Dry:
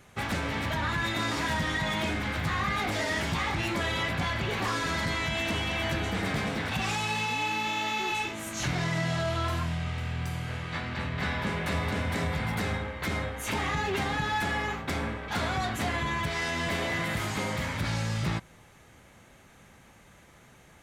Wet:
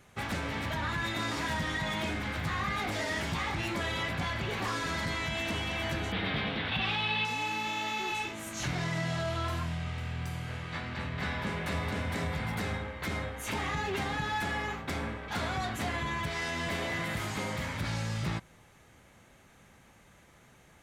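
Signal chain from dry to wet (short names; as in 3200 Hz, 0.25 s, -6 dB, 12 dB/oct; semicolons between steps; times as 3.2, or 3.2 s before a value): 6.12–7.25 resonant high shelf 5000 Hz -13.5 dB, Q 3; gain -3.5 dB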